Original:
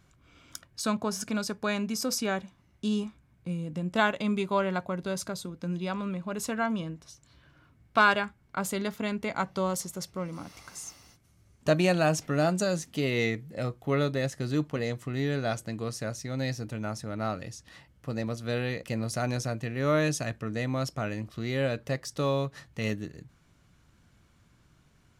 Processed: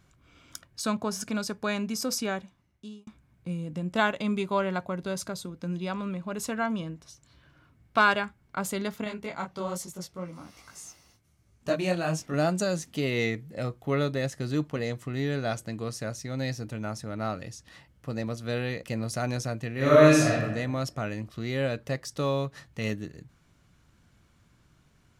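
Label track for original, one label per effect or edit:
2.200000	3.070000	fade out
9.040000	12.340000	micro pitch shift up and down each way 41 cents
19.740000	20.420000	thrown reverb, RT60 1 s, DRR −6.5 dB

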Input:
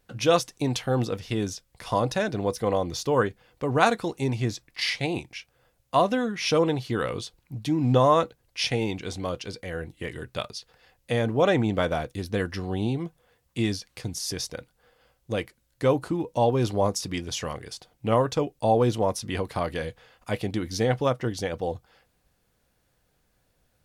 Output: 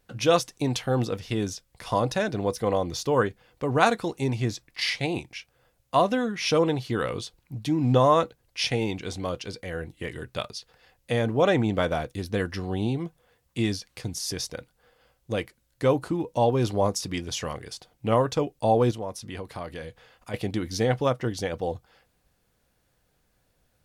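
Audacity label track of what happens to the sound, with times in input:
18.910000	20.340000	downward compressor 1.5 to 1, threshold −45 dBFS

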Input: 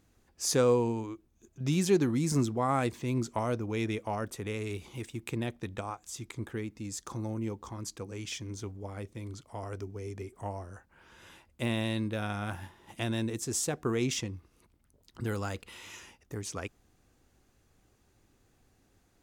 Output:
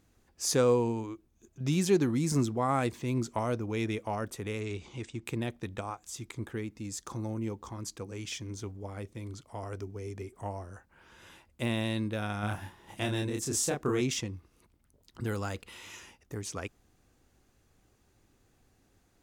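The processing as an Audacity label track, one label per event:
4.600000	5.250000	Butterworth low-pass 8,000 Hz
12.400000	14.010000	double-tracking delay 29 ms −3 dB

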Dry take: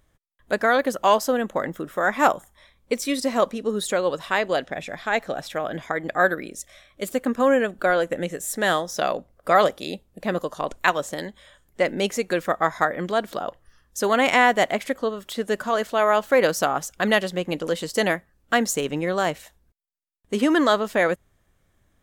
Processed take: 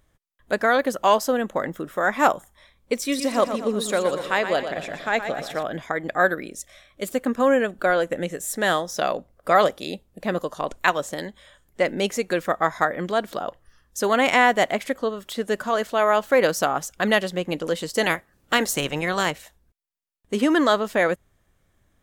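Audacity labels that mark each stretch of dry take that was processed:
3.000000	5.630000	repeating echo 120 ms, feedback 50%, level −9 dB
18.020000	19.300000	ceiling on every frequency bin ceiling under each frame's peak by 14 dB

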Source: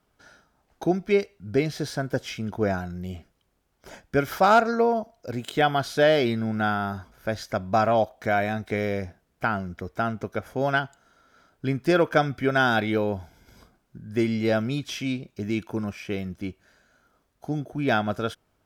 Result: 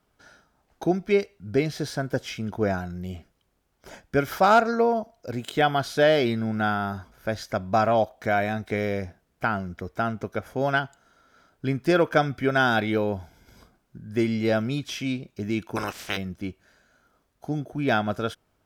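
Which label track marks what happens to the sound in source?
15.750000	16.160000	ceiling on every frequency bin ceiling under each frame's peak by 29 dB

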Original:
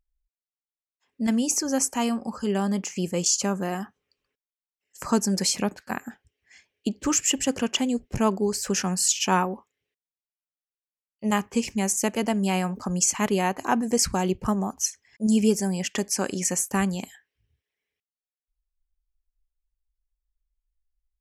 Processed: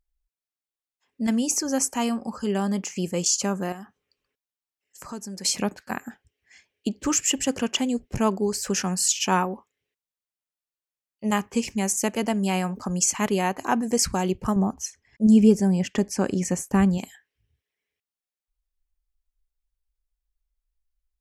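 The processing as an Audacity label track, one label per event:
3.720000	5.450000	downward compressor 2 to 1, threshold −43 dBFS
14.560000	16.980000	spectral tilt −2.5 dB per octave

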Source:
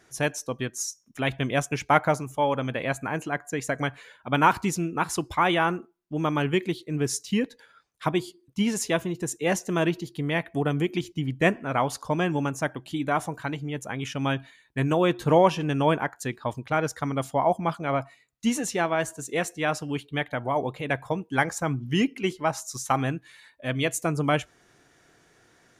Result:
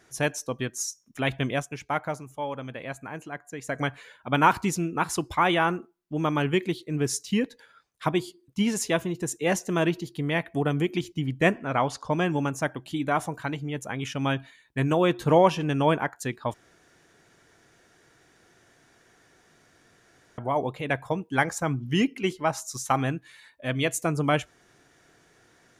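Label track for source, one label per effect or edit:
1.480000	3.800000	duck −8 dB, fades 0.18 s
11.580000	12.110000	low-pass filter 9,500 Hz → 5,800 Hz
16.540000	20.380000	fill with room tone

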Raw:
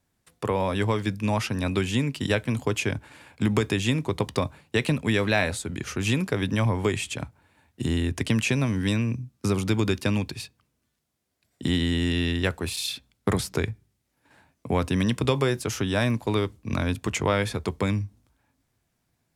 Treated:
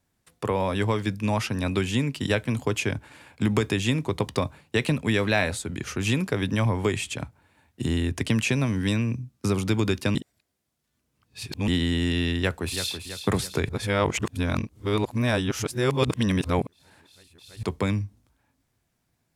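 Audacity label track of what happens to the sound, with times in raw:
10.150000	11.680000	reverse
12.390000	12.940000	delay throw 330 ms, feedback 50%, level −8.5 dB
13.690000	17.630000	reverse

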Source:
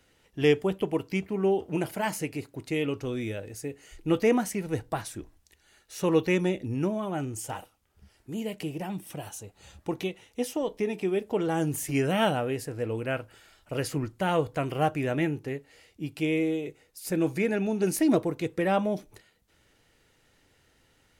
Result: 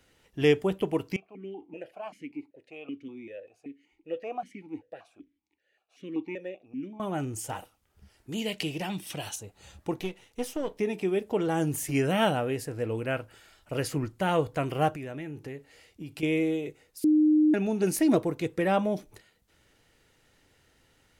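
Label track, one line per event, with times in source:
1.160000	7.000000	formant filter that steps through the vowels 5.2 Hz
8.320000	9.360000	parametric band 3,800 Hz +11.5 dB 2 octaves
9.990000	10.790000	gain on one half-wave negative side −7 dB
14.940000	16.230000	downward compressor, threshold −35 dBFS
17.040000	17.540000	beep over 306 Hz −17.5 dBFS

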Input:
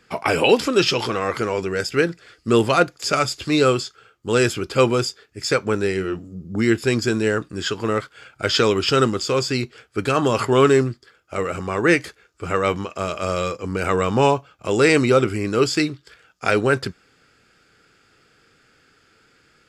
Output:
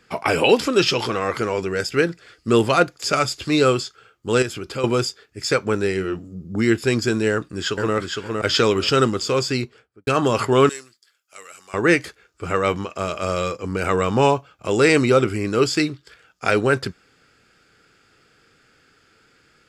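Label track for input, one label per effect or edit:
4.420000	4.840000	downward compressor 2 to 1, threshold −30 dBFS
7.310000	7.950000	delay throw 460 ms, feedback 25%, level −3.5 dB
9.520000	10.070000	fade out and dull
10.690000	11.740000	first difference

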